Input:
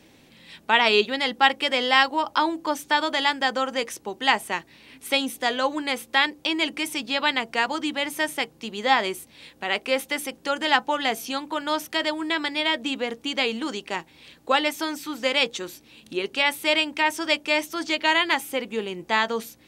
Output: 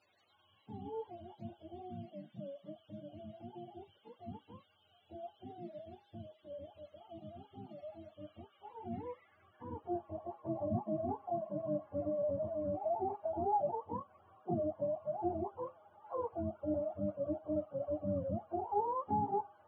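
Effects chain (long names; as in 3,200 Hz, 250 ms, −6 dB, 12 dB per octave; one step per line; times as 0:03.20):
frequency axis turned over on the octave scale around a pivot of 430 Hz
band-pass filter sweep 3,400 Hz → 1,000 Hz, 0:08.05–0:10.53
level +5.5 dB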